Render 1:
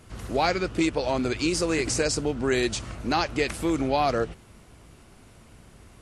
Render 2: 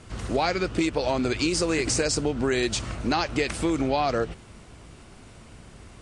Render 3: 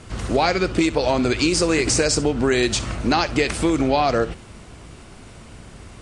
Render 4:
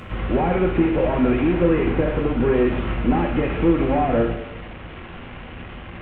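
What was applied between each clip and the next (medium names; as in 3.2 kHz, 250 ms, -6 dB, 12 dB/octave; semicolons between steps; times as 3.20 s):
Chebyshev low-pass 9.2 kHz, order 4; compression 4:1, threshold -26 dBFS, peak gain reduction 6 dB; trim +5 dB
flutter echo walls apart 11 m, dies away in 0.22 s; trim +5.5 dB
one-bit delta coder 16 kbps, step -32 dBFS; reverberation, pre-delay 3 ms, DRR 3 dB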